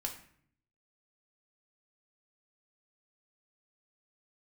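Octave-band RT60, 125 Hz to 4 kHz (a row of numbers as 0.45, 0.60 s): 0.95, 0.85, 0.60, 0.55, 0.60, 0.45 s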